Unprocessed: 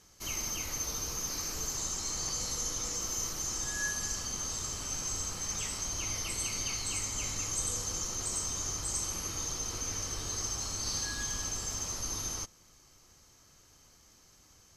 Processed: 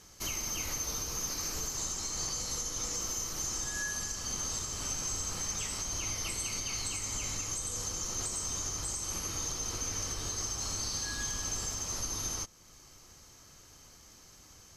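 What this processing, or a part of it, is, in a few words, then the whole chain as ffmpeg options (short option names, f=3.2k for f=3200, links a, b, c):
stacked limiters: -af "alimiter=level_in=3dB:limit=-24dB:level=0:latency=1:release=426,volume=-3dB,alimiter=level_in=6.5dB:limit=-24dB:level=0:latency=1:release=294,volume=-6.5dB,volume=5dB"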